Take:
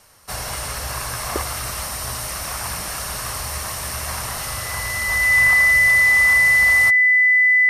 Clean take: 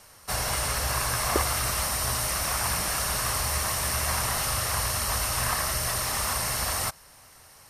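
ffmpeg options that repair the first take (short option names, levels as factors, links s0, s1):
-af "bandreject=f=2000:w=30"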